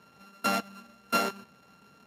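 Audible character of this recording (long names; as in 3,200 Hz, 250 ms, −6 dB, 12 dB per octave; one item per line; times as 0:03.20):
a buzz of ramps at a fixed pitch in blocks of 32 samples
Speex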